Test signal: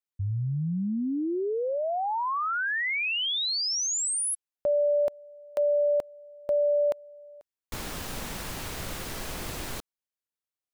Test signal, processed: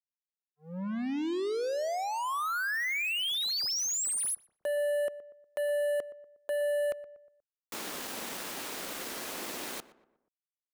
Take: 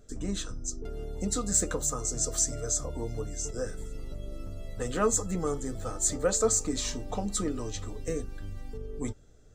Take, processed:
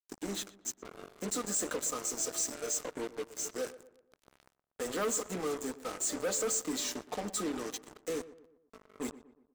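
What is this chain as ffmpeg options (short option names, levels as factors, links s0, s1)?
-filter_complex "[0:a]highpass=f=230:w=0.5412,highpass=f=230:w=1.3066,adynamicequalizer=threshold=0.00562:dfrequency=840:dqfactor=3.5:tfrequency=840:tqfactor=3.5:attack=5:release=100:ratio=0.375:range=2:mode=cutabove:tftype=bell,acrusher=bits=5:mix=0:aa=0.5,asoftclip=type=tanh:threshold=0.0376,asplit=2[s0][s1];[s1]adelay=120,lowpass=f=1700:p=1,volume=0.168,asplit=2[s2][s3];[s3]adelay=120,lowpass=f=1700:p=1,volume=0.46,asplit=2[s4][s5];[s5]adelay=120,lowpass=f=1700:p=1,volume=0.46,asplit=2[s6][s7];[s7]adelay=120,lowpass=f=1700:p=1,volume=0.46[s8];[s0][s2][s4][s6][s8]amix=inputs=5:normalize=0"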